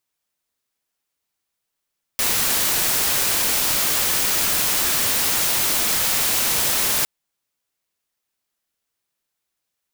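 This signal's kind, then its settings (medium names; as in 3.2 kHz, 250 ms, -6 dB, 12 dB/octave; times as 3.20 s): noise white, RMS -20 dBFS 4.86 s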